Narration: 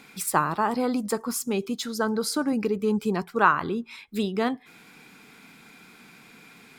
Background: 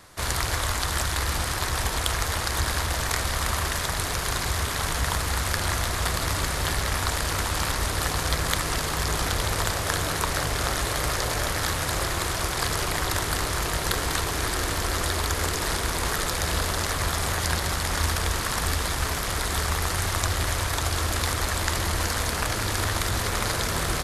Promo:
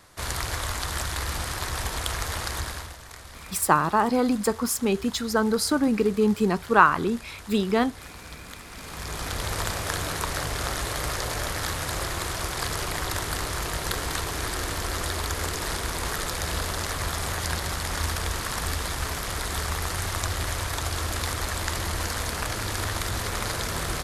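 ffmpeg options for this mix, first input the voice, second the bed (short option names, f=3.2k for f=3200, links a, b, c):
-filter_complex "[0:a]adelay=3350,volume=3dB[a];[1:a]volume=11dB,afade=t=out:st=2.48:d=0.49:silence=0.199526,afade=t=in:st=8.71:d=0.85:silence=0.188365[b];[a][b]amix=inputs=2:normalize=0"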